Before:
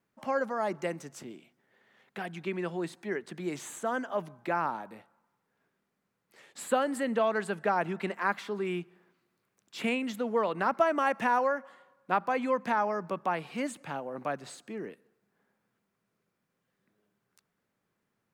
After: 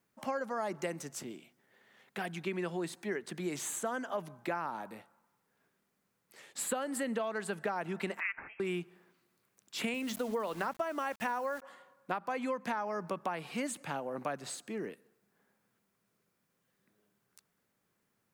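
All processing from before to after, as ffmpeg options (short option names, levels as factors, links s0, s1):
-filter_complex "[0:a]asettb=1/sr,asplit=3[s0][s1][s2];[s0]atrim=end=8.204[s3];[s1]atrim=start=8.2:end=8.6,asetpts=PTS-STARTPTS,afade=t=in:d=0.004:c=qsin,afade=t=out:st=0.396:d=0.004:c=qsin,highpass=f=1300:w=0.5412,highpass=f=1300:w=1.3066,lowpass=f=3100:t=q:w=0.5098,lowpass=f=3100:t=q:w=0.6013,lowpass=f=3100:t=q:w=0.9,lowpass=f=3100:t=q:w=2.563,afreqshift=-3600[s4];[s2]atrim=start=8.596[s5];[s3][s4]acrossfade=d=0.004:c1=hsin:c2=qsin[s6];[s6][s5]acrossfade=d=0.004:c1=qsin:c2=hsin,asettb=1/sr,asplit=3[s7][s8][s9];[s7]atrim=end=9.944[s10];[s8]atrim=start=9.94:end=11.62,asetpts=PTS-STARTPTS,afade=t=in:d=0.004:c=qsin,afade=t=out:st=1.676:d=0.004:c=qsin,agate=range=0.0224:threshold=0.0112:ratio=3:release=100:detection=peak,bandreject=f=60:t=h:w=6,bandreject=f=120:t=h:w=6,bandreject=f=180:t=h:w=6,bandreject=f=240:t=h:w=6,aeval=exprs='val(0)*gte(abs(val(0)),0.00562)':c=same[s11];[s9]atrim=start=11.616[s12];[s10][s11]acrossfade=d=0.004:c1=hsin:c2=qsin[s13];[s13][s12]acrossfade=d=0.004:c1=qsin:c2=hsin,highshelf=f=5200:g=8,acompressor=threshold=0.0282:ratio=10"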